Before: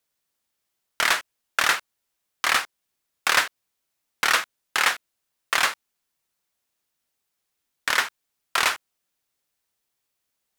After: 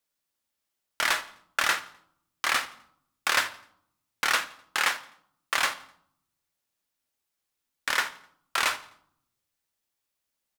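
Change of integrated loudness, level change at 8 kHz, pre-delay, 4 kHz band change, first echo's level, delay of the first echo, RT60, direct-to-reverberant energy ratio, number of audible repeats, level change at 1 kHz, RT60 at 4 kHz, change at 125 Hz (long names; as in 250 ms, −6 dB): −4.0 dB, −4.0 dB, 3 ms, −4.0 dB, −22.0 dB, 85 ms, 0.65 s, 9.0 dB, 2, −4.0 dB, 0.55 s, can't be measured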